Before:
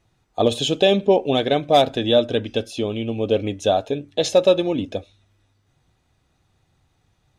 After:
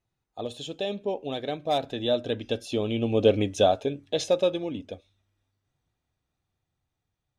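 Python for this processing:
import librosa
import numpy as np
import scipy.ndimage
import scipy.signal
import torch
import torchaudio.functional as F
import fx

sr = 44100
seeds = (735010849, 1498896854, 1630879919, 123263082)

y = fx.doppler_pass(x, sr, speed_mps=7, closest_m=3.3, pass_at_s=3.28)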